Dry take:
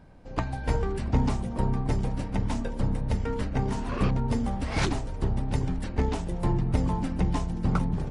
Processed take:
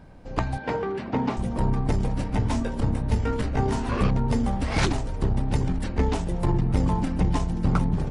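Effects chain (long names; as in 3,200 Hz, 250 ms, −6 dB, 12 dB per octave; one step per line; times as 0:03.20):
0:00.58–0:01.37: band-pass filter 220–3,400 Hz
0:02.29–0:04.03: double-tracking delay 18 ms −6 dB
saturating transformer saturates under 110 Hz
level +4.5 dB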